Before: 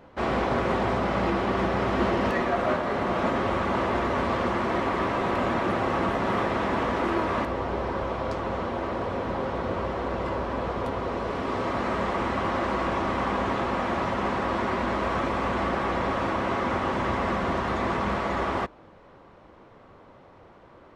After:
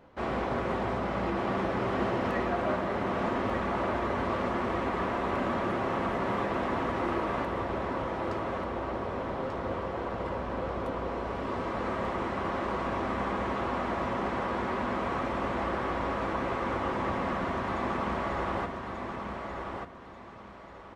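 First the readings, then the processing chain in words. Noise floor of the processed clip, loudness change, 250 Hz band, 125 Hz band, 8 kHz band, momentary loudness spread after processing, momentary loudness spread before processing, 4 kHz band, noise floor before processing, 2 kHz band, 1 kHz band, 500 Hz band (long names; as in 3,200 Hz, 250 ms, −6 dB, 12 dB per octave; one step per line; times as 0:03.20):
−47 dBFS, −4.5 dB, −4.5 dB, −4.5 dB, can't be measured, 5 LU, 4 LU, −6.5 dB, −52 dBFS, −5.0 dB, −4.5 dB, −4.5 dB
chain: repeating echo 1,188 ms, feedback 28%, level −5 dB
dynamic equaliser 5,000 Hz, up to −3 dB, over −50 dBFS, Q 0.7
level −5.5 dB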